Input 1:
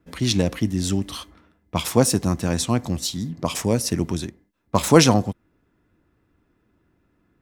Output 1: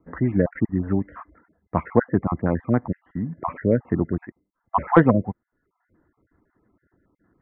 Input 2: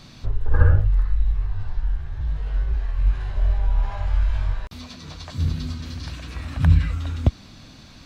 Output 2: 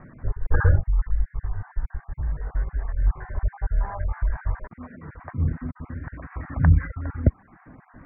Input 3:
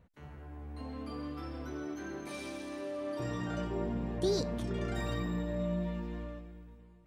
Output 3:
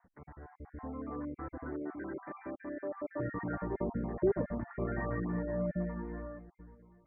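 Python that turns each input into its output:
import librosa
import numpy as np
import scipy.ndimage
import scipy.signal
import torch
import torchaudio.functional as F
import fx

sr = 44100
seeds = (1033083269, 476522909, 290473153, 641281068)

y = fx.spec_dropout(x, sr, seeds[0], share_pct=26)
y = scipy.signal.sosfilt(scipy.signal.butter(12, 2000.0, 'lowpass', fs=sr, output='sos'), y)
y = fx.dereverb_blind(y, sr, rt60_s=0.57)
y = fx.low_shelf(y, sr, hz=150.0, db=-5.0)
y = 10.0 ** (-3.0 / 20.0) * np.tanh(y / 10.0 ** (-3.0 / 20.0))
y = y * 10.0 ** (3.5 / 20.0)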